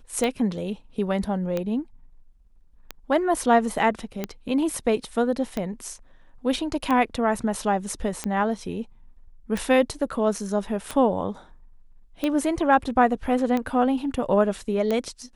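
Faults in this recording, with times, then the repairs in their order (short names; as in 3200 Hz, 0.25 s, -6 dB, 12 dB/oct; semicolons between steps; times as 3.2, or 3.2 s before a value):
tick 45 rpm -13 dBFS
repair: de-click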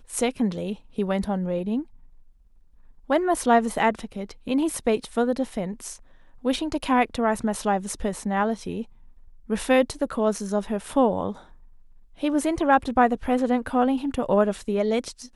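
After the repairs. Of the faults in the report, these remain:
none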